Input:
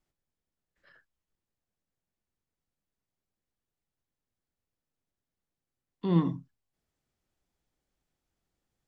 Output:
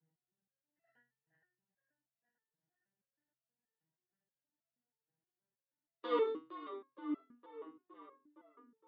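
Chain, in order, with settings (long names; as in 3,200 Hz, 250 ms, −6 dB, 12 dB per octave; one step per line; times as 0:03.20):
adaptive Wiener filter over 41 samples
flat-topped bell 1,600 Hz +11.5 dB 2.5 octaves
in parallel at −0.5 dB: downward compressor, threshold −32 dBFS, peak gain reduction 13.5 dB
on the sum: frequency shifter +130 Hz
on a send: feedback echo with a low-pass in the loop 464 ms, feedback 75%, low-pass 3,200 Hz, level −10.5 dB
on the sum: step-sequenced resonator 6.3 Hz 160–670 Hz
level +3 dB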